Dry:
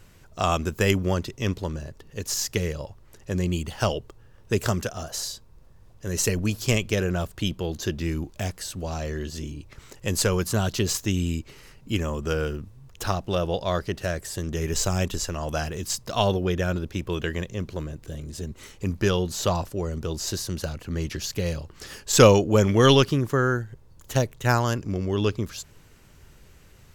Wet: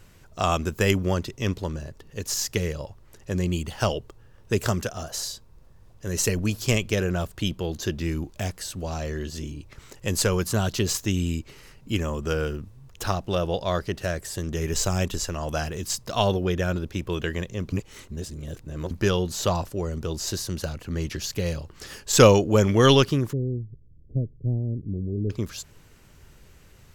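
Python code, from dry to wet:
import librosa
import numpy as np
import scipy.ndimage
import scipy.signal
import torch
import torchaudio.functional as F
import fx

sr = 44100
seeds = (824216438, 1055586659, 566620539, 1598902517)

y = fx.gaussian_blur(x, sr, sigma=24.0, at=(23.33, 25.3))
y = fx.edit(y, sr, fx.reverse_span(start_s=17.72, length_s=1.19), tone=tone)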